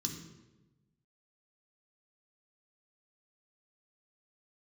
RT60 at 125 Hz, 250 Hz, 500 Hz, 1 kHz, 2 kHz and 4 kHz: 1.5, 1.3, 1.2, 0.95, 0.90, 0.75 s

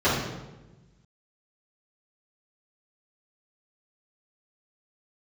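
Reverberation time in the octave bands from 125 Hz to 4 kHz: 1.7, 1.5, 1.2, 1.0, 0.90, 0.80 s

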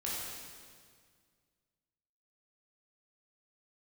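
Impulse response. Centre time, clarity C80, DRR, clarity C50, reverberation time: 0.12 s, 0.0 dB, -6.5 dB, -2.0 dB, 1.9 s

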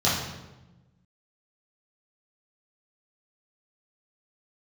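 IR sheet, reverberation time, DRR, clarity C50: 1.1 s, -10.5 dB, 2.0 dB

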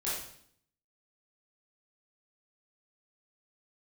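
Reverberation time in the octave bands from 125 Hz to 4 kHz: 0.85, 0.80, 0.65, 0.60, 0.60, 0.60 s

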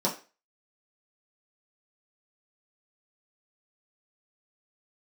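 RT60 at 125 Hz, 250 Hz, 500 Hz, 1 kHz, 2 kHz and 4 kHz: 0.20, 0.30, 0.35, 0.35, 0.35, 0.30 s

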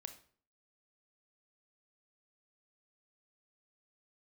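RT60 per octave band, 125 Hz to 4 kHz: 0.55, 0.55, 0.50, 0.45, 0.40, 0.40 s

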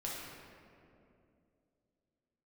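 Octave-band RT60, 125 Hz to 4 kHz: 3.1, 3.6, 3.0, 2.2, 1.9, 1.3 s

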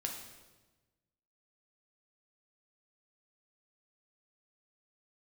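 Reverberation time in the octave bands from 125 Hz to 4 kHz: 1.6, 1.4, 1.3, 1.1, 1.0, 1.0 s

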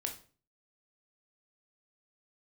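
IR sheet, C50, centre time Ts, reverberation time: 10.0 dB, 15 ms, 0.40 s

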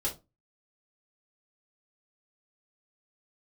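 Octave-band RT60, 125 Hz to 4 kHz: 0.35, 0.35, 0.25, 0.25, 0.15, 0.20 s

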